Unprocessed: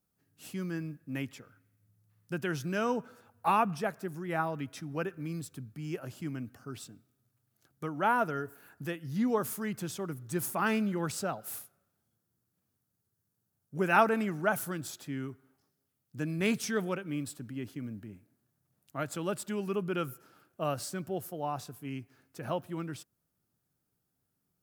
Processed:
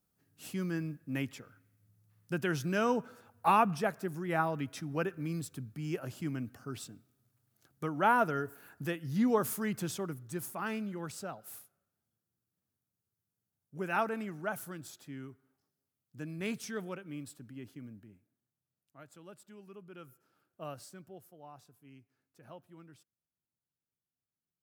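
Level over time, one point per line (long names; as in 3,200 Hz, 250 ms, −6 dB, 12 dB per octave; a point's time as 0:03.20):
0:09.94 +1 dB
0:10.49 −7.5 dB
0:17.82 −7.5 dB
0:18.99 −18.5 dB
0:19.86 −18.5 dB
0:20.64 −10 dB
0:21.30 −17 dB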